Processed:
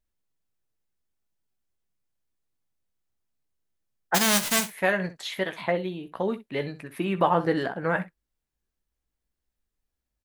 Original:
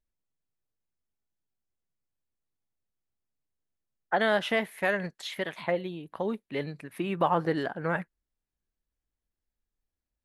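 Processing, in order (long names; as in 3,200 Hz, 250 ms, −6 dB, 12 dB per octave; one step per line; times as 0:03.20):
0:04.14–0:04.67: spectral envelope flattened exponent 0.1
on a send: ambience of single reflections 16 ms −9.5 dB, 63 ms −15 dB
on the sum: level +3 dB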